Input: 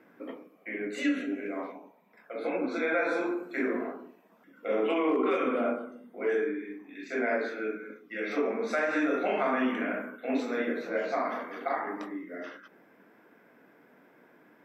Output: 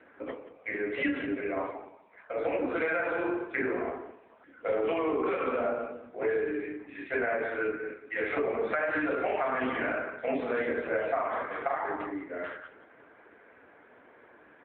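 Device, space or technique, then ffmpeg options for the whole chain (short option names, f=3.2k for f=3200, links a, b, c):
voicemail: -filter_complex "[0:a]asplit=3[a][b][c];[a]afade=t=out:st=8.74:d=0.02[d];[b]highshelf=f=6.9k:g=-3.5,afade=t=in:st=8.74:d=0.02,afade=t=out:st=9.49:d=0.02[e];[c]afade=t=in:st=9.49:d=0.02[f];[d][e][f]amix=inputs=3:normalize=0,highpass=380,lowpass=3.2k,aecho=1:1:175|350:0.178|0.0391,acompressor=threshold=-31dB:ratio=10,volume=6.5dB" -ar 8000 -c:a libopencore_amrnb -b:a 7950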